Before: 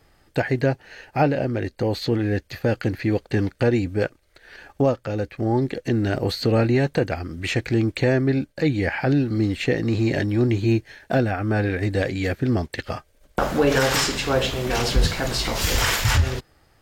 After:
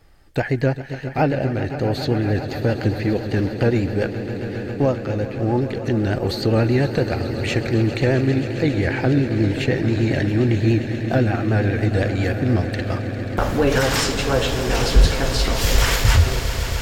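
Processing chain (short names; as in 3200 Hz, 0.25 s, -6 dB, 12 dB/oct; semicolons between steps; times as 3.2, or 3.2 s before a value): low shelf 65 Hz +10.5 dB; swelling echo 0.134 s, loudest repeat 5, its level -14.5 dB; vibrato 10 Hz 45 cents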